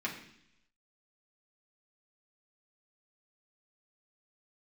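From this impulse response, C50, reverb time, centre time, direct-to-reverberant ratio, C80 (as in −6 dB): 8.0 dB, 0.70 s, 24 ms, −4.0 dB, 10.5 dB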